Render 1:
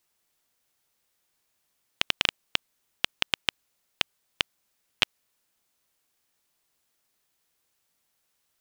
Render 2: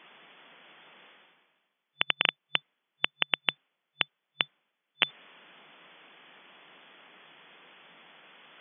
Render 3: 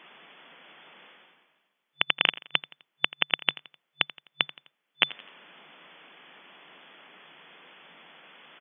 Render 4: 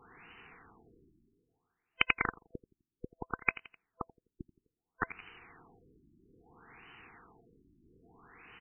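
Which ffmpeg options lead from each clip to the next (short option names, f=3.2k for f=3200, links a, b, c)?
-af "afftfilt=real='re*between(b*sr/4096,140,3500)':imag='im*between(b*sr/4096,140,3500)':win_size=4096:overlap=0.75,lowshelf=f=340:g=-4,areverse,acompressor=mode=upward:threshold=-32dB:ratio=2.5,areverse"
-af "aecho=1:1:85|170|255:0.112|0.0482|0.0207,volume=2.5dB"
-af "afftfilt=real='real(if(lt(b,1008),b+24*(1-2*mod(floor(b/24),2)),b),0)':imag='imag(if(lt(b,1008),b+24*(1-2*mod(floor(b/24),2)),b),0)':win_size=2048:overlap=0.75,crystalizer=i=1.5:c=0,afftfilt=real='re*lt(b*sr/1024,370*pow(3100/370,0.5+0.5*sin(2*PI*0.61*pts/sr)))':imag='im*lt(b*sr/1024,370*pow(3100/370,0.5+0.5*sin(2*PI*0.61*pts/sr)))':win_size=1024:overlap=0.75,volume=-2.5dB"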